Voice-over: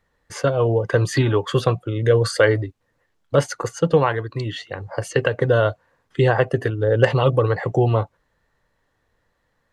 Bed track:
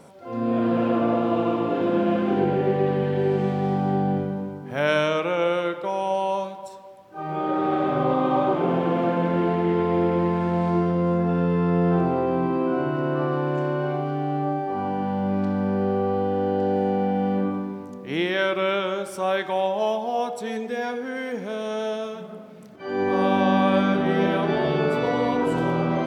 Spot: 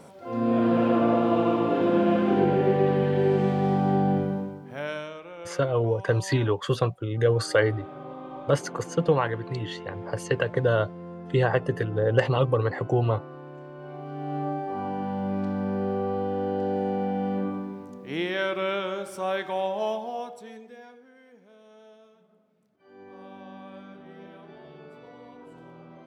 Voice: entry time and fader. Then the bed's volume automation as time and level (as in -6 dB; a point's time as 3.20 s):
5.15 s, -5.5 dB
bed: 4.35 s 0 dB
5.20 s -18 dB
13.73 s -18 dB
14.37 s -4.5 dB
19.93 s -4.5 dB
21.14 s -24.5 dB